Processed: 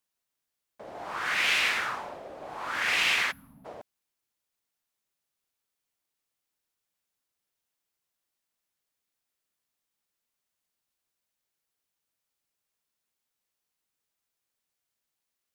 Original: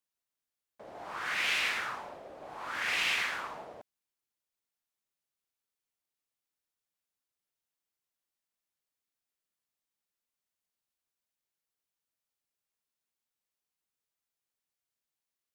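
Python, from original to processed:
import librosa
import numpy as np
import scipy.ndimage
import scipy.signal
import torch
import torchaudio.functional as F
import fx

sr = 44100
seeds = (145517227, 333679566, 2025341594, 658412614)

y = fx.spec_box(x, sr, start_s=3.31, length_s=0.34, low_hz=280.0, high_hz=10000.0, gain_db=-30)
y = y * 10.0 ** (5.0 / 20.0)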